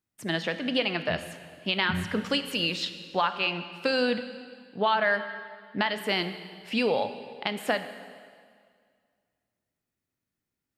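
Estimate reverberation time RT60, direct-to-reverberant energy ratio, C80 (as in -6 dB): 2.0 s, 9.0 dB, 11.5 dB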